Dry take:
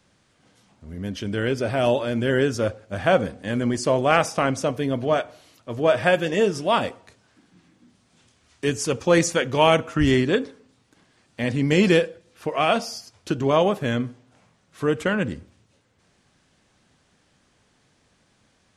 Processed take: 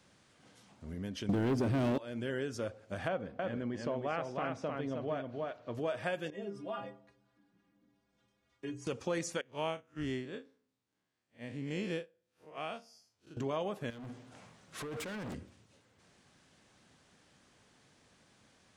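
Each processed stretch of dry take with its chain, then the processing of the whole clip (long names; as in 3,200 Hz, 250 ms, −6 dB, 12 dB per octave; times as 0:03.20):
0:01.29–0:01.98: low shelf with overshoot 450 Hz +11 dB, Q 1.5 + leveller curve on the samples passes 3
0:03.08–0:05.75: low-pass filter 5,000 Hz + high-shelf EQ 3,300 Hz −8.5 dB + single-tap delay 311 ms −5 dB
0:06.30–0:08.87: low-pass filter 1,600 Hz 6 dB per octave + stiff-string resonator 60 Hz, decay 0.53 s, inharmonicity 0.03
0:09.41–0:13.37: spectrum smeared in time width 92 ms + expander for the loud parts 2.5 to 1, over −30 dBFS
0:13.90–0:15.35: compressor whose output falls as the input rises −29 dBFS + gain into a clipping stage and back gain 34.5 dB
whole clip: low-shelf EQ 64 Hz −9 dB; downward compressor 2.5 to 1, threshold −38 dBFS; level −2 dB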